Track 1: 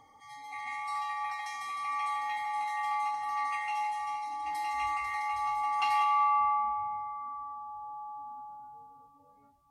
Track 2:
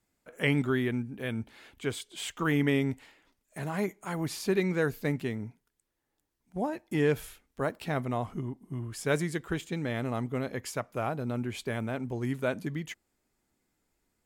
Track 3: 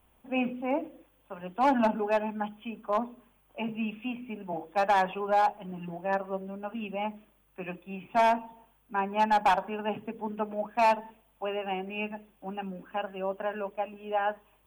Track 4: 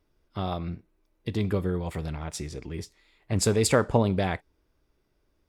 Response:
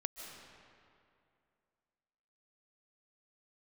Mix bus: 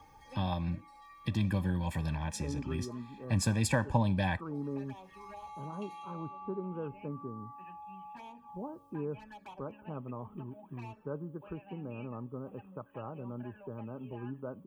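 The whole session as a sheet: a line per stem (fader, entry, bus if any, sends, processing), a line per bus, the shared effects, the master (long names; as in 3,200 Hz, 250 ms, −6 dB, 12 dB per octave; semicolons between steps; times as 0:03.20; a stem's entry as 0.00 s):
−6.5 dB, 0.00 s, bus A, no send, automatic ducking −16 dB, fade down 1.20 s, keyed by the fourth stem
−5.5 dB, 2.00 s, no bus, no send, Butterworth low-pass 1,400 Hz 96 dB per octave; tuned comb filter 280 Hz, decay 1 s, mix 50%
−12.0 dB, 0.00 s, bus A, no send, tuned comb filter 190 Hz, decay 0.48 s, harmonics all, mix 50%
−3.0 dB, 0.00 s, no bus, no send, comb filter 1.2 ms, depth 92%
bus A: 0.0 dB, flanger swept by the level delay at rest 2.5 ms, full sweep at −36.5 dBFS; downward compressor 2.5 to 1, threshold −52 dBFS, peak gain reduction 11.5 dB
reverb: not used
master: notch comb filter 700 Hz; multiband upward and downward compressor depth 40%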